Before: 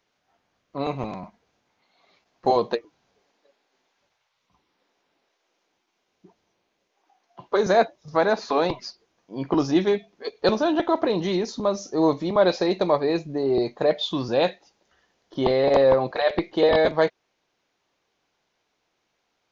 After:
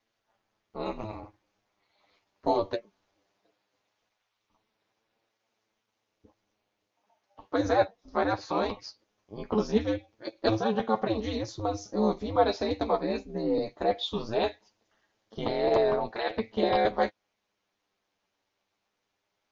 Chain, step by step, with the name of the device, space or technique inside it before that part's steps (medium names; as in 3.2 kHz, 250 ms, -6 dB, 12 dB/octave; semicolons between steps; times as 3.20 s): alien voice (ring modulator 110 Hz; flange 0.19 Hz, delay 8.8 ms, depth 1.6 ms, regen +22%); 7.69–8.41 s: low-pass 5.2 kHz 12 dB/octave